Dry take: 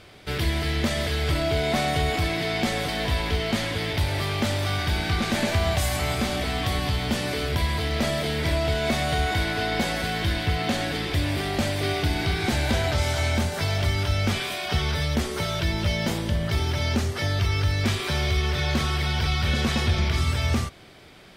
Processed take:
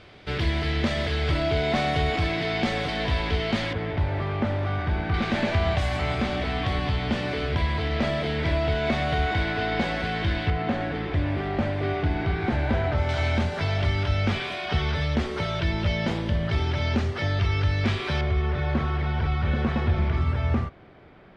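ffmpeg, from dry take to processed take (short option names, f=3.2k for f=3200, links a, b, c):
-af "asetnsamples=n=441:p=0,asendcmd='3.73 lowpass f 1600;5.14 lowpass f 3100;10.5 lowpass f 1800;13.09 lowpass f 3300;18.21 lowpass f 1600',lowpass=4.1k"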